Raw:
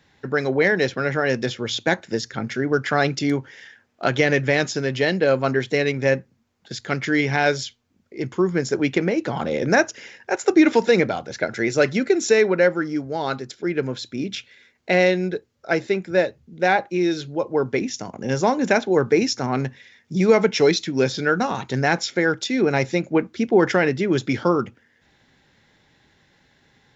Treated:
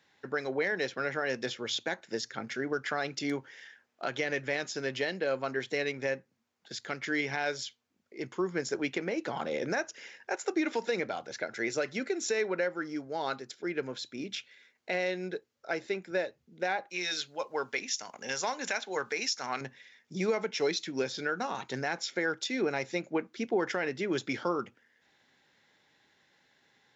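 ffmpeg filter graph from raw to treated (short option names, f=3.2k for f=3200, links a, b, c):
-filter_complex "[0:a]asettb=1/sr,asplit=3[a][b][c];[a]atrim=end=16.904[d];[b]atrim=start=16.9:end=19.61,asetpts=PTS-STARTPTS,afade=t=in:d=0.004:c=qsin,afade=t=out:st=2.706:d=0.004:c=qsin,tiltshelf=f=780:g=-8.5,bandreject=f=340:w=8.2[e];[c]atrim=start=19.606[f];[d][e]acrossfade=d=0.004:c1=hsin:c2=qsin[g];[g][f]acrossfade=d=0.004:c1=qsin:c2=hsin,highpass=f=440:p=1,alimiter=limit=-13.5dB:level=0:latency=1:release=238,volume=-6.5dB"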